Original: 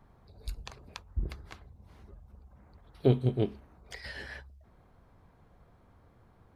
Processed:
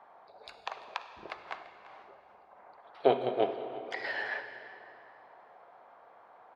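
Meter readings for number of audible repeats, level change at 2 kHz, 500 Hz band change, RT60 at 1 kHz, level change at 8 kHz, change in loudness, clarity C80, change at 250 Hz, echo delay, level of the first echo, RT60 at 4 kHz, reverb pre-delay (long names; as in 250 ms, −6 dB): 1, +8.5 dB, +3.0 dB, 2.9 s, can't be measured, −1.0 dB, 9.0 dB, −6.5 dB, 340 ms, −17.5 dB, 2.2 s, 32 ms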